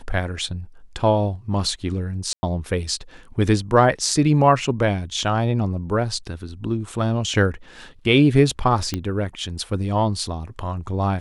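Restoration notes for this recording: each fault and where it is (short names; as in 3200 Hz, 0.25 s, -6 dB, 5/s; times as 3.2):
2.33–2.43 gap 0.1 s
8.94 pop -10 dBFS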